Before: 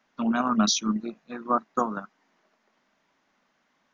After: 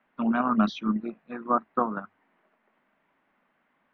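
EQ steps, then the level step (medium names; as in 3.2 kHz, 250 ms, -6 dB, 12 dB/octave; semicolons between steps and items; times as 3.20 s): low-pass 2.7 kHz 24 dB/octave; hum notches 50/100 Hz; 0.0 dB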